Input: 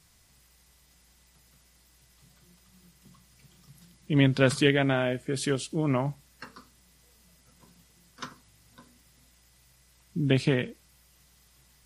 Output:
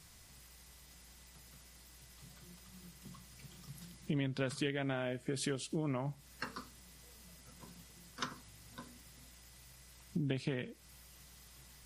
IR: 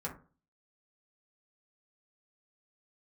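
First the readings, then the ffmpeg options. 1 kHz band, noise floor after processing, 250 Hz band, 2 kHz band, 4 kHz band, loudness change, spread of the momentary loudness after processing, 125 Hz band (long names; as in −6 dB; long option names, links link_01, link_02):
−10.0 dB, −59 dBFS, −11.5 dB, −12.5 dB, −10.5 dB, −13.5 dB, 20 LU, −12.0 dB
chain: -af "acompressor=threshold=-38dB:ratio=5,volume=3dB"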